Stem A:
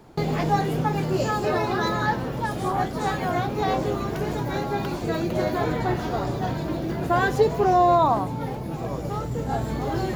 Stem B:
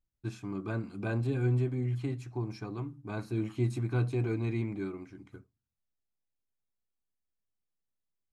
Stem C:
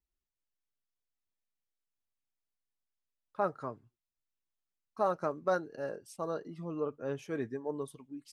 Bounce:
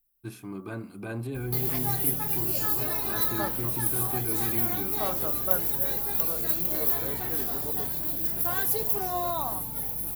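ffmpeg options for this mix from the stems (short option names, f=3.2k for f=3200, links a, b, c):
-filter_complex "[0:a]crystalizer=i=5.5:c=0,aeval=exprs='val(0)+0.0282*(sin(2*PI*50*n/s)+sin(2*PI*2*50*n/s)/2+sin(2*PI*3*50*n/s)/3+sin(2*PI*4*50*n/s)/4+sin(2*PI*5*50*n/s)/5)':c=same,adelay=1350,volume=-14.5dB[a];[1:a]equalizer=f=73:w=1:g=-9,alimiter=level_in=2.5dB:limit=-24dB:level=0:latency=1:release=27,volume=-2.5dB,volume=1dB[b];[2:a]volume=-3dB[c];[a][b][c]amix=inputs=3:normalize=0,bandreject=f=72.41:t=h:w=4,bandreject=f=144.82:t=h:w=4,bandreject=f=217.23:t=h:w=4,bandreject=f=289.64:t=h:w=4,bandreject=f=362.05:t=h:w=4,bandreject=f=434.46:t=h:w=4,bandreject=f=506.87:t=h:w=4,bandreject=f=579.28:t=h:w=4,bandreject=f=651.69:t=h:w=4,bandreject=f=724.1:t=h:w=4,bandreject=f=796.51:t=h:w=4,bandreject=f=868.92:t=h:w=4,bandreject=f=941.33:t=h:w=4,bandreject=f=1.01374k:t=h:w=4,bandreject=f=1.08615k:t=h:w=4,bandreject=f=1.15856k:t=h:w=4,bandreject=f=1.23097k:t=h:w=4,bandreject=f=1.30338k:t=h:w=4,bandreject=f=1.37579k:t=h:w=4,aexciter=amount=13.9:drive=2.5:freq=9.8k"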